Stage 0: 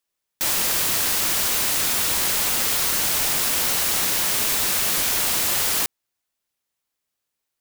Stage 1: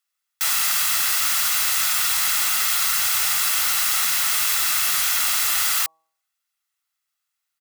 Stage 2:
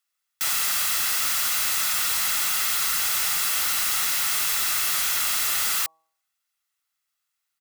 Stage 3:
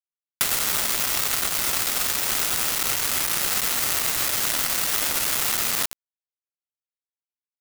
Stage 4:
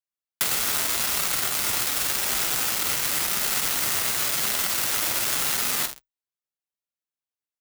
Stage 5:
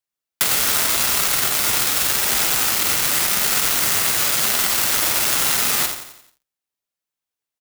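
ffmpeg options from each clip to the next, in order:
-af "lowshelf=f=780:t=q:w=1.5:g=-13,aecho=1:1:1.5:0.44,bandreject=f=160.7:t=h:w=4,bandreject=f=321.4:t=h:w=4,bandreject=f=482.1:t=h:w=4,bandreject=f=642.8:t=h:w=4,bandreject=f=803.5:t=h:w=4,bandreject=f=964.2:t=h:w=4,bandreject=f=1.1249k:t=h:w=4"
-af "asoftclip=type=tanh:threshold=-19dB"
-filter_complex "[0:a]asplit=2[a][b];[b]asplit=6[c][d][e][f][g][h];[c]adelay=98,afreqshift=-35,volume=-4.5dB[i];[d]adelay=196,afreqshift=-70,volume=-11.2dB[j];[e]adelay=294,afreqshift=-105,volume=-18dB[k];[f]adelay=392,afreqshift=-140,volume=-24.7dB[l];[g]adelay=490,afreqshift=-175,volume=-31.5dB[m];[h]adelay=588,afreqshift=-210,volume=-38.2dB[n];[i][j][k][l][m][n]amix=inputs=6:normalize=0[o];[a][o]amix=inputs=2:normalize=0,acrossover=split=2600|7500[p][q][r];[p]acompressor=threshold=-33dB:ratio=4[s];[q]acompressor=threshold=-39dB:ratio=4[t];[r]acompressor=threshold=-31dB:ratio=4[u];[s][t][u]amix=inputs=3:normalize=0,acrusher=bits=3:mix=0:aa=0.000001,volume=8.5dB"
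-filter_complex "[0:a]afreqshift=24,flanger=delay=4.8:depth=4.5:regen=-44:speed=0.88:shape=sinusoidal,asplit=2[a][b];[b]adelay=49,volume=-8.5dB[c];[a][c]amix=inputs=2:normalize=0,volume=2.5dB"
-af "aecho=1:1:88|176|264|352|440:0.335|0.157|0.074|0.0348|0.0163,volume=5.5dB"

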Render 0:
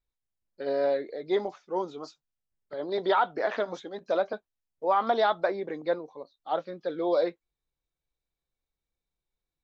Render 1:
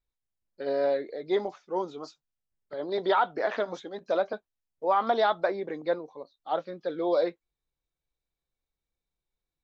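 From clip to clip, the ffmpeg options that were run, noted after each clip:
-af anull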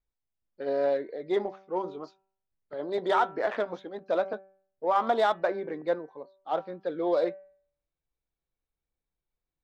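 -af "bandreject=f=192.4:t=h:w=4,bandreject=f=384.8:t=h:w=4,bandreject=f=577.2:t=h:w=4,bandreject=f=769.6:t=h:w=4,bandreject=f=962:t=h:w=4,bandreject=f=1.1544k:t=h:w=4,bandreject=f=1.3468k:t=h:w=4,bandreject=f=1.5392k:t=h:w=4,bandreject=f=1.7316k:t=h:w=4,bandreject=f=1.924k:t=h:w=4,bandreject=f=2.1164k:t=h:w=4,bandreject=f=2.3088k:t=h:w=4,bandreject=f=2.5012k:t=h:w=4,bandreject=f=2.6936k:t=h:w=4,bandreject=f=2.886k:t=h:w=4,adynamicsmooth=sensitivity=3:basefreq=3k"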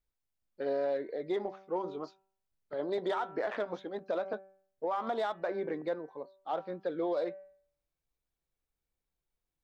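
-af "alimiter=level_in=0.5dB:limit=-24dB:level=0:latency=1:release=164,volume=-0.5dB"

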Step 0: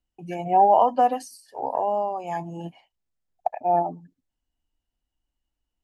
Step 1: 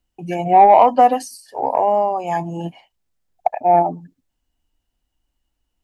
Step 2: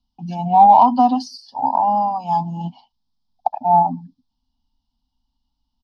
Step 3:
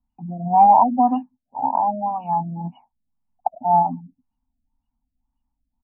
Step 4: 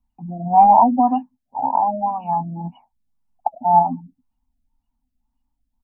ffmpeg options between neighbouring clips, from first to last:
-af "acontrast=55,volume=2dB"
-af "firequalizer=gain_entry='entry(150,0);entry(250,9);entry(380,-28);entry(870,6);entry(1900,-27);entry(3300,3);entry(5000,8);entry(7500,-22)':delay=0.05:min_phase=1"
-af "afftfilt=real='re*lt(b*sr/1024,680*pow(3000/680,0.5+0.5*sin(2*PI*1.9*pts/sr)))':imag='im*lt(b*sr/1024,680*pow(3000/680,0.5+0.5*sin(2*PI*1.9*pts/sr)))':win_size=1024:overlap=0.75,volume=-2.5dB"
-af "flanger=delay=0.8:depth=4:regen=68:speed=0.67:shape=triangular,volume=6dB"

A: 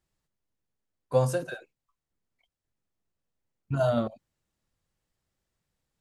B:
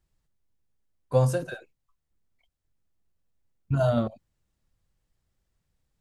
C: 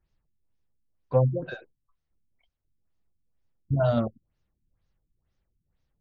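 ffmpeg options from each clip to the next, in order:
-af "lowshelf=f=110:g=11.5"
-af "afftfilt=real='re*lt(b*sr/1024,330*pow(7000/330,0.5+0.5*sin(2*PI*2.1*pts/sr)))':imag='im*lt(b*sr/1024,330*pow(7000/330,0.5+0.5*sin(2*PI*2.1*pts/sr)))':win_size=1024:overlap=0.75"

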